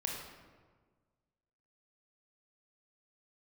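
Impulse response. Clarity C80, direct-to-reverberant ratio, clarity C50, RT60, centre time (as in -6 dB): 4.0 dB, -1.0 dB, 1.5 dB, 1.5 s, 61 ms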